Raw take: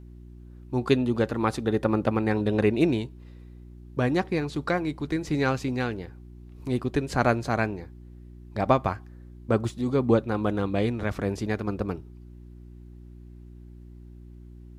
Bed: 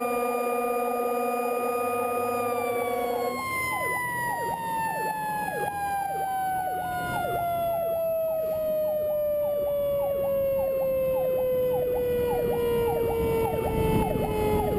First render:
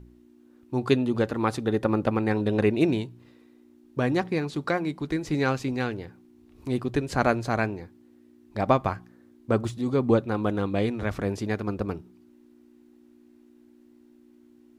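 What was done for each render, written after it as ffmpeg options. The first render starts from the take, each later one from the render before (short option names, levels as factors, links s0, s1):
-af "bandreject=f=60:t=h:w=4,bandreject=f=120:t=h:w=4,bandreject=f=180:t=h:w=4"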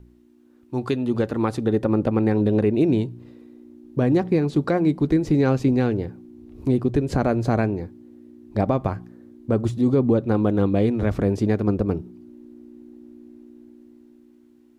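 -filter_complex "[0:a]acrossover=split=640|3300[s0][s1][s2];[s0]dynaudnorm=f=400:g=7:m=3.98[s3];[s3][s1][s2]amix=inputs=3:normalize=0,alimiter=limit=0.299:level=0:latency=1:release=179"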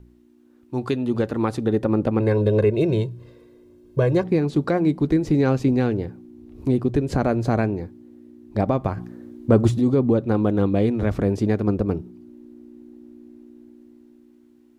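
-filter_complex "[0:a]asettb=1/sr,asplit=3[s0][s1][s2];[s0]atrim=end=2.204[s3];[s1]atrim=start=2.2:end=4.24,asetpts=PTS-STARTPTS,afade=t=in:d=0.004:c=qsin,afade=t=out:st=2.036:d=0.004:c=qsin,aecho=1:1:1.9:0.87,atrim=end_sample=89964[s4];[s2]atrim=start=4.236[s5];[s3][s4]acrossfade=d=0.004:c1=hsin:c2=qsin[s6];[s6][s5]acrossfade=d=0.004:c1=qsin:c2=hsin,asettb=1/sr,asplit=3[s7][s8][s9];[s7]atrim=end=8.974[s10];[s8]atrim=start=8.97:end=9.8,asetpts=PTS-STARTPTS,afade=t=in:d=0.004:c=qsin,afade=t=out:st=0.826:d=0.004:c=qsin,acontrast=54[s11];[s9]atrim=start=9.796[s12];[s10][s11]acrossfade=d=0.004:c1=hsin:c2=qsin[s13];[s13][s12]acrossfade=d=0.004:c1=qsin:c2=hsin"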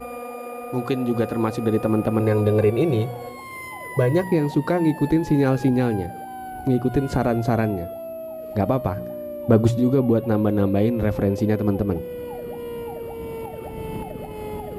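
-filter_complex "[1:a]volume=0.447[s0];[0:a][s0]amix=inputs=2:normalize=0"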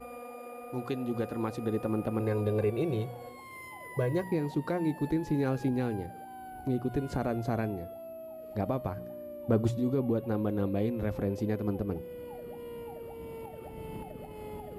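-af "volume=0.299"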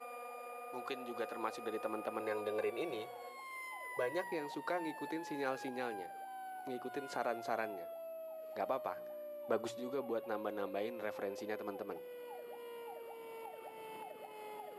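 -af "highpass=650,highshelf=f=10000:g=-6"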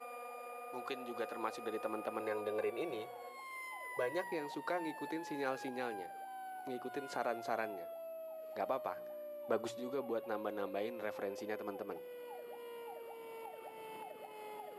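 -filter_complex "[0:a]asettb=1/sr,asplit=3[s0][s1][s2];[s0]atrim=end=2.284[s3];[s1]atrim=start=2.28:end=3.34,asetpts=PTS-STARTPTS,afade=t=in:d=0.004:c=qsin,afade=t=out:st=1.056:d=0.004:c=qsin,equalizer=f=5000:w=0.6:g=-3[s4];[s2]atrim=start=3.336[s5];[s3][s4]acrossfade=d=0.004:c1=hsin:c2=qsin[s6];[s6][s5]acrossfade=d=0.004:c1=qsin:c2=hsin,asettb=1/sr,asplit=3[s7][s8][s9];[s7]atrim=end=11.324[s10];[s8]atrim=start=11.32:end=11.92,asetpts=PTS-STARTPTS,afade=t=in:d=0.004:c=qsin,afade=t=out:st=0.596:d=0.004:c=qsin,bandreject=f=4000:w=12[s11];[s9]atrim=start=11.916[s12];[s10][s11]acrossfade=d=0.004:c1=hsin:c2=qsin[s13];[s13][s12]acrossfade=d=0.004:c1=qsin:c2=hsin"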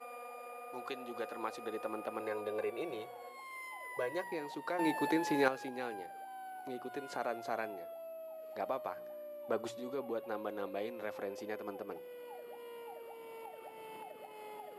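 -filter_complex "[0:a]asplit=3[s0][s1][s2];[s0]atrim=end=4.792[s3];[s1]atrim=start=4.788:end=5.482,asetpts=PTS-STARTPTS,volume=2.99[s4];[s2]atrim=start=5.478[s5];[s3][s4]acrossfade=d=0.004:c1=hsin:c2=hsin[s6];[s6][s5]acrossfade=d=0.004:c1=hsin:c2=hsin"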